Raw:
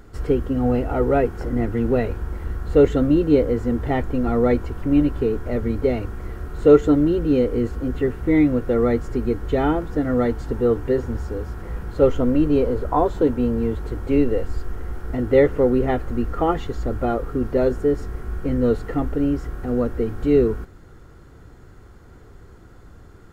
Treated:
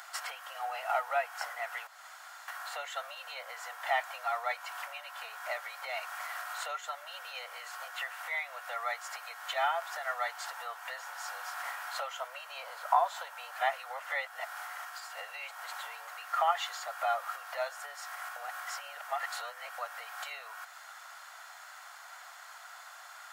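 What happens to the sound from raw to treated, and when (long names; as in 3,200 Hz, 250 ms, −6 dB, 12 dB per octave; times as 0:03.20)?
0:01.87–0:02.48: fill with room tone
0:13.51–0:16.07: reverse
0:18.36–0:19.78: reverse
whole clip: downward compressor 4 to 1, threshold −28 dBFS; Butterworth high-pass 640 Hz 72 dB per octave; tilt shelving filter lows −5.5 dB; level +6.5 dB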